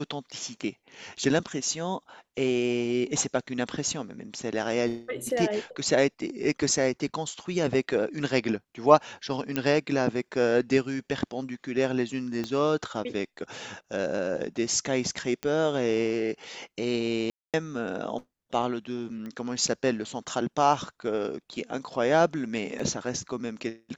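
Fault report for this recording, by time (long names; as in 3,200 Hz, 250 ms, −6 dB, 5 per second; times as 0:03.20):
0:09.56: click −13 dBFS
0:12.44: click −19 dBFS
0:15.43: click −17 dBFS
0:17.30–0:17.54: drop-out 237 ms
0:19.26: click −27 dBFS
0:22.79: drop-out 4.6 ms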